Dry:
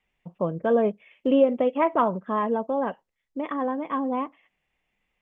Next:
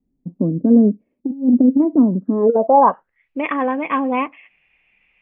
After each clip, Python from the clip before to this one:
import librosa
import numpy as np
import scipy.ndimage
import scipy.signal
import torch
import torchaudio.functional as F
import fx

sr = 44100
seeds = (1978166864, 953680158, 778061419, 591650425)

y = fx.filter_sweep_lowpass(x, sr, from_hz=270.0, to_hz=2500.0, start_s=2.26, end_s=3.28, q=6.7)
y = fx.over_compress(y, sr, threshold_db=-15.0, ratio=-0.5)
y = y * 10.0 ** (3.5 / 20.0)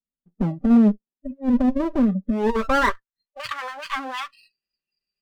y = fx.lower_of_two(x, sr, delay_ms=0.68)
y = y + 0.52 * np.pad(y, (int(5.1 * sr / 1000.0), 0))[:len(y)]
y = fx.noise_reduce_blind(y, sr, reduce_db=26)
y = y * 10.0 ** (-5.0 / 20.0)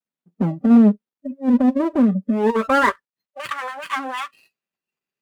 y = scipy.signal.medfilt(x, 9)
y = scipy.signal.sosfilt(scipy.signal.butter(2, 130.0, 'highpass', fs=sr, output='sos'), y)
y = y * 10.0 ** (3.5 / 20.0)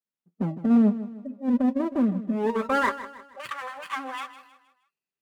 y = fx.echo_feedback(x, sr, ms=157, feedback_pct=41, wet_db=-14)
y = y * 10.0 ** (-7.0 / 20.0)